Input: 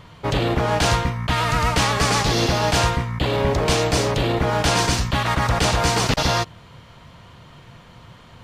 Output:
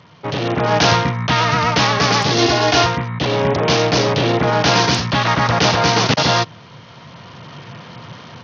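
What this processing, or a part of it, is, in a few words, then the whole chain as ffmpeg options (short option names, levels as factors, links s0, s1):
Bluetooth headset: -filter_complex "[0:a]asettb=1/sr,asplit=3[s0][s1][s2];[s0]atrim=end=2.384[s3];[s1]atrim=start=2.38:end=2.86,asetpts=PTS-STARTPTS,afade=t=in:d=0.004:c=qsin,afade=t=out:st=0.476:d=0.004:c=qsin,aecho=1:1:2.8:0.86,atrim=end_sample=21168[s4];[s2]atrim=start=2.856[s5];[s3][s4]acrossfade=d=0.004:c1=hsin:c2=qsin[s6];[s6][s5]acrossfade=d=0.004:c1=qsin:c2=hsin,highpass=f=110:w=0.5412,highpass=f=110:w=1.3066,dynaudnorm=f=400:g=3:m=3.76,aresample=16000,aresample=44100,volume=0.891" -ar 48000 -c:a sbc -b:a 64k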